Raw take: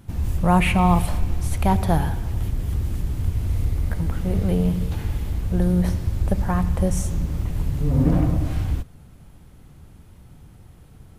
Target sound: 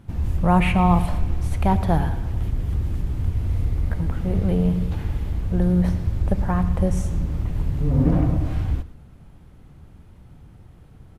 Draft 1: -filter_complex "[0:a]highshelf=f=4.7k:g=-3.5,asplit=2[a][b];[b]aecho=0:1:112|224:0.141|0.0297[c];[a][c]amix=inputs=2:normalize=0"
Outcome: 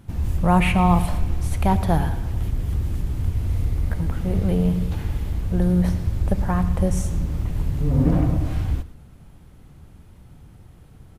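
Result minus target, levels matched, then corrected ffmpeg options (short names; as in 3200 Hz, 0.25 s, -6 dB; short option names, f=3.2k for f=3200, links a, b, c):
8000 Hz band +5.5 dB
-filter_complex "[0:a]highshelf=f=4.7k:g=-11,asplit=2[a][b];[b]aecho=0:1:112|224:0.141|0.0297[c];[a][c]amix=inputs=2:normalize=0"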